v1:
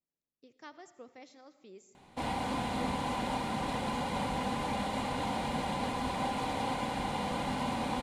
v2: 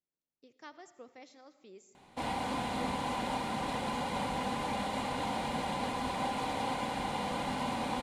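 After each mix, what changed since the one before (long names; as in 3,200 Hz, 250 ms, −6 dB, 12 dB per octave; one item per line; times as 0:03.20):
master: add low-shelf EQ 200 Hz −4.5 dB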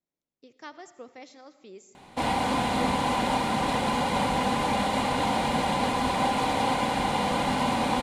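speech +7.0 dB
background +9.0 dB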